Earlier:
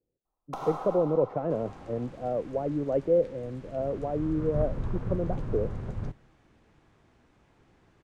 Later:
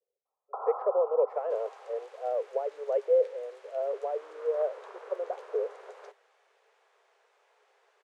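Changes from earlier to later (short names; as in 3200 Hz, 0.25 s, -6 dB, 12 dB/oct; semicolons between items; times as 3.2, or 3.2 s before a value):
first sound: add steep low-pass 1400 Hz 96 dB/oct; master: add steep high-pass 410 Hz 96 dB/oct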